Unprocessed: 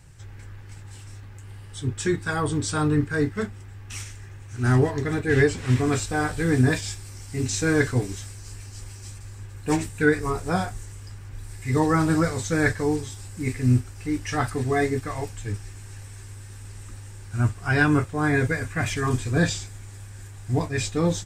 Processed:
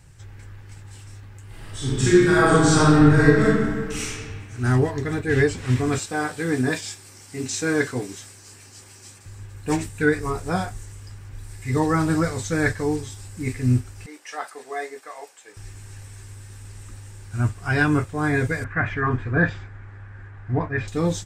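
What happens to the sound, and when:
1.47–4.07 reverb throw, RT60 1.8 s, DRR -9 dB
5.98–9.26 HPF 190 Hz
14.06–15.57 ladder high-pass 420 Hz, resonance 25%
18.64–20.88 synth low-pass 1600 Hz, resonance Q 2.2

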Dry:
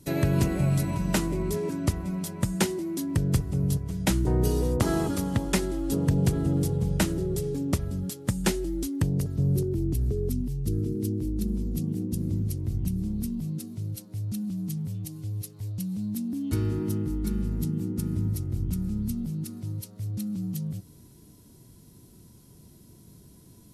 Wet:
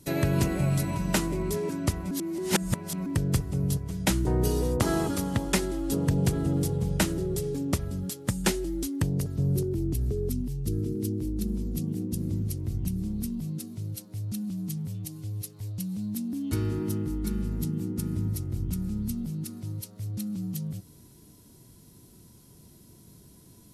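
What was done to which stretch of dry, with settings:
2.11–3.06 reverse
whole clip: low shelf 440 Hz -3.5 dB; gain +1.5 dB

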